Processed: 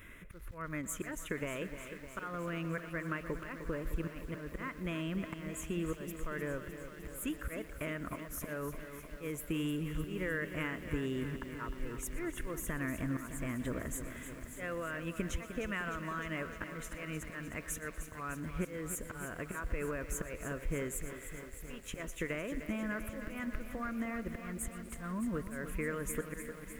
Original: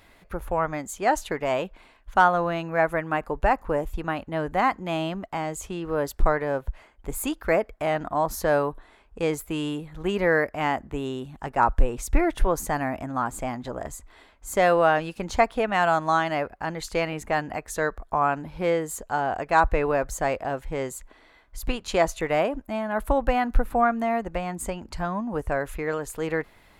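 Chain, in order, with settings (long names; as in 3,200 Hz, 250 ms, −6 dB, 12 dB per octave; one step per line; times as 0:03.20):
volume swells 623 ms
downward compressor 12 to 1, threshold −34 dBFS, peak gain reduction 18 dB
phaser with its sweep stopped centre 1,900 Hz, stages 4
on a send: feedback echo with a high-pass in the loop 120 ms, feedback 64%, high-pass 210 Hz, level −18.5 dB
on the sum: feedback echo at a low word length 305 ms, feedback 80%, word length 10 bits, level −10 dB
level +4 dB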